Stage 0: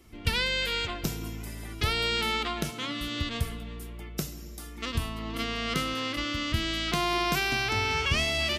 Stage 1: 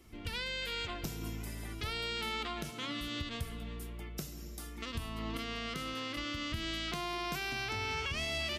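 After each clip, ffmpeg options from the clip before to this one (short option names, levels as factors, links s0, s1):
-af "alimiter=limit=0.0668:level=0:latency=1:release=226,volume=0.708"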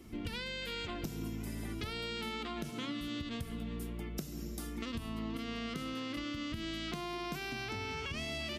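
-af "equalizer=f=230:t=o:w=1.7:g=8.5,acompressor=threshold=0.0126:ratio=6,volume=1.26"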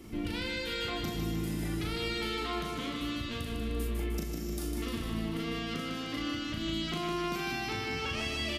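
-filter_complex "[0:a]alimiter=level_in=2.11:limit=0.0631:level=0:latency=1:release=361,volume=0.473,asplit=2[s0][s1];[s1]adelay=37,volume=0.668[s2];[s0][s2]amix=inputs=2:normalize=0,asplit=2[s3][s4];[s4]aecho=0:1:152|304|456|608|760|912|1064|1216:0.562|0.332|0.196|0.115|0.0681|0.0402|0.0237|0.014[s5];[s3][s5]amix=inputs=2:normalize=0,volume=1.58"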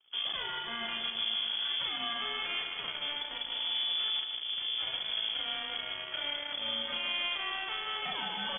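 -af "aeval=exprs='0.0944*(cos(1*acos(clip(val(0)/0.0944,-1,1)))-cos(1*PI/2))+0.0133*(cos(7*acos(clip(val(0)/0.0944,-1,1)))-cos(7*PI/2))':c=same,aresample=16000,asoftclip=type=tanh:threshold=0.0251,aresample=44100,lowpass=f=3000:t=q:w=0.5098,lowpass=f=3000:t=q:w=0.6013,lowpass=f=3000:t=q:w=0.9,lowpass=f=3000:t=q:w=2.563,afreqshift=-3500,volume=2"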